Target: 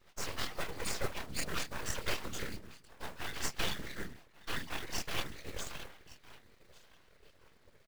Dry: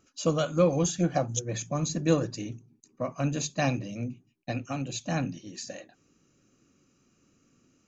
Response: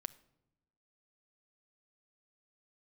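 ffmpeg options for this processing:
-filter_complex "[0:a]acrossover=split=260|3000[s0][s1][s2];[s1]acompressor=threshold=0.0316:ratio=6[s3];[s0][s3][s2]amix=inputs=3:normalize=0,highshelf=f=5600:g=-5.5,acrossover=split=120|590|3800[s4][s5][s6][s7];[s5]acompressor=threshold=0.00631:ratio=16[s8];[s4][s8][s6][s7]amix=inputs=4:normalize=0,firequalizer=gain_entry='entry(110,0);entry(160,-27);entry(360,12);entry(530,-30);entry(760,-4);entry(1900,5);entry(2900,5);entry(4200,4);entry(10000,-18)':delay=0.05:min_phase=1,aecho=1:1:1149|2298:0.1|0.024,asetrate=31183,aresample=44100,atempo=1.41421,flanger=delay=22.5:depth=6.7:speed=0.36,acrusher=bits=3:mode=log:mix=0:aa=0.000001,afftfilt=real='hypot(re,im)*cos(2*PI*random(0))':imag='hypot(re,im)*sin(2*PI*random(1))':win_size=512:overlap=0.75,aeval=exprs='abs(val(0))':c=same,volume=4.22"

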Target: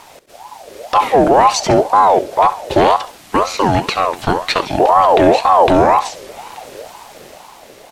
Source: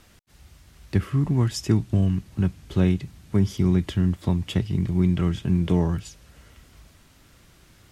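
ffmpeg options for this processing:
-filter_complex "[0:a]acrossover=split=5700[s0][s1];[s1]acompressor=threshold=0.002:ratio=4:attack=1:release=60[s2];[s0][s2]amix=inputs=2:normalize=0,asettb=1/sr,asplit=3[s3][s4][s5];[s3]atrim=end=2.964[s6];[s4]atrim=start=2.96:end=4.8,asetpts=PTS-STARTPTS,afade=t=in:d=0.004:c=qsin,afade=t=out:st=1.836:d=0.004:c=qsin,highpass=360[s7];[s5]atrim=start=4.796[s8];[s6][s7]acrossfade=d=0.004:c1=hsin:c2=qsin[s9];[s9][s8]acrossfade=d=0.004:c1=qsin:c2=hsin,dynaudnorm=f=130:g=11:m=1.58,apsyclip=9.44,aeval=exprs='1.06*(cos(1*acos(clip(val(0)/1.06,-1,1)))-cos(1*PI/2))+0.0188*(cos(6*acos(clip(val(0)/1.06,-1,1)))-cos(6*PI/2))':c=same,asplit=2[s10][s11];[s11]aecho=0:1:68|136|204:0.188|0.0603|0.0193[s12];[s10][s12]amix=inputs=2:normalize=0,aeval=exprs='val(0)*sin(2*PI*700*n/s+700*0.35/2*sin(2*PI*2*n/s))':c=same,volume=0.708"

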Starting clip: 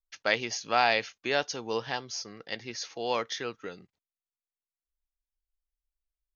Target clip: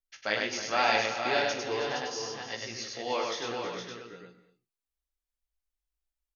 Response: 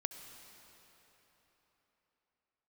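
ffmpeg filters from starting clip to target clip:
-filter_complex "[0:a]flanger=delay=16.5:depth=4.1:speed=0.81,aecho=1:1:44|315|465:0.237|0.251|0.473,asplit=2[s0][s1];[1:a]atrim=start_sample=2205,afade=t=out:st=0.3:d=0.01,atrim=end_sample=13671,adelay=100[s2];[s1][s2]afir=irnorm=-1:irlink=0,volume=0.841[s3];[s0][s3]amix=inputs=2:normalize=0"

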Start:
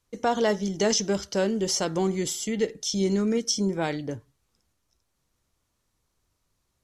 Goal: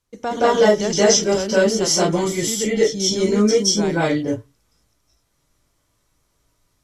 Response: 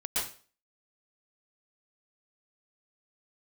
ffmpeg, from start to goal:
-filter_complex "[1:a]atrim=start_sample=2205,atrim=end_sample=6615,asetrate=29106,aresample=44100[s0];[0:a][s0]afir=irnorm=-1:irlink=0"

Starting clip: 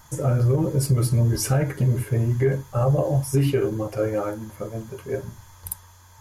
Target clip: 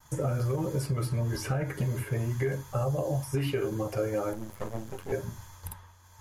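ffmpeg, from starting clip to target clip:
-filter_complex "[0:a]asettb=1/sr,asplit=3[s0][s1][s2];[s0]atrim=end=4.334[s3];[s1]atrim=start=4.33:end=5.12,asetpts=PTS-STARTPTS,afade=t=in:d=0.004:c=qsin,afade=t=out:st=0.786:d=0.004:c=qsin,aeval=exprs='max(val(0),0)':c=same[s4];[s2]atrim=start=5.116[s5];[s3][s4]acrossfade=d=0.004:c1=hsin:c2=qsin[s6];[s6][s5]acrossfade=d=0.004:c1=qsin:c2=hsin,acrossover=split=650|3400[s7][s8][s9];[s7]acompressor=threshold=0.0355:ratio=4[s10];[s8]acompressor=threshold=0.0141:ratio=4[s11];[s9]acompressor=threshold=0.00562:ratio=4[s12];[s10][s11][s12]amix=inputs=3:normalize=0,agate=range=0.0224:threshold=0.00562:ratio=3:detection=peak"

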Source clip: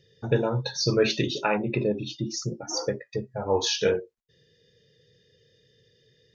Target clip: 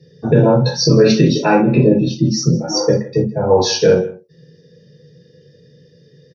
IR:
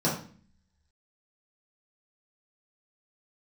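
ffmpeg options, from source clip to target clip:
-filter_complex "[0:a]aecho=1:1:160:0.0944[s0];[1:a]atrim=start_sample=2205,atrim=end_sample=3528[s1];[s0][s1]afir=irnorm=-1:irlink=0,alimiter=level_in=1:limit=0.891:release=50:level=0:latency=1,volume=0.891"

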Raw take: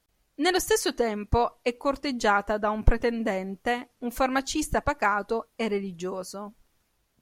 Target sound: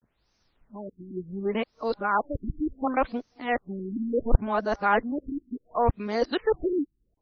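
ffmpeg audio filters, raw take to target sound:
-af "areverse,aexciter=amount=3.2:drive=2.2:freq=4200,afftfilt=real='re*lt(b*sr/1024,350*pow(6500/350,0.5+0.5*sin(2*PI*0.69*pts/sr)))':imag='im*lt(b*sr/1024,350*pow(6500/350,0.5+0.5*sin(2*PI*0.69*pts/sr)))':win_size=1024:overlap=0.75"

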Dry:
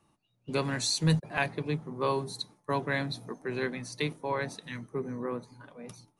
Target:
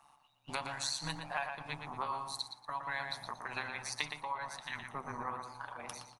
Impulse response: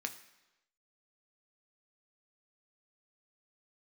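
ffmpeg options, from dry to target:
-filter_complex "[0:a]lowshelf=f=580:t=q:w=3:g=-12.5,acompressor=threshold=0.00794:ratio=4,tremolo=f=140:d=0.857,asplit=2[s0][s1];[s1]adelay=117,lowpass=f=3800:p=1,volume=0.531,asplit=2[s2][s3];[s3]adelay=117,lowpass=f=3800:p=1,volume=0.31,asplit=2[s4][s5];[s5]adelay=117,lowpass=f=3800:p=1,volume=0.31,asplit=2[s6][s7];[s7]adelay=117,lowpass=f=3800:p=1,volume=0.31[s8];[s0][s2][s4][s6][s8]amix=inputs=5:normalize=0,volume=2.66"

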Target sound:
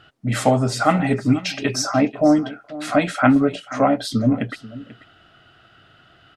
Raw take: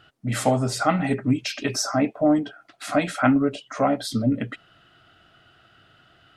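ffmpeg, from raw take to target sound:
-filter_complex "[0:a]highshelf=f=8900:g=-7.5,asplit=2[s0][s1];[s1]aecho=0:1:488:0.133[s2];[s0][s2]amix=inputs=2:normalize=0,volume=1.58"

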